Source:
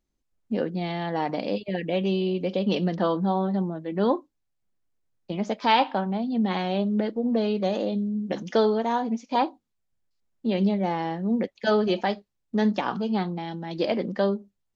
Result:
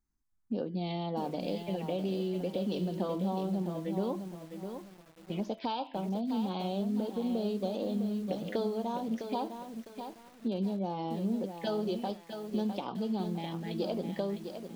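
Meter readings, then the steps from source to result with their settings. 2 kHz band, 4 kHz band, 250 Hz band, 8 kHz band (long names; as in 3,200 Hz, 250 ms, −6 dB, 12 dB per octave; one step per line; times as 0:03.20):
−16.0 dB, −10.0 dB, −7.0 dB, can't be measured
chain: hum removal 334.9 Hz, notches 35
downward compressor 5 to 1, threshold −27 dBFS, peak gain reduction 11.5 dB
phaser swept by the level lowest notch 520 Hz, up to 2,000 Hz, full sweep at −26.5 dBFS
feedback echo at a low word length 656 ms, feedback 35%, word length 8 bits, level −7.5 dB
level −2.5 dB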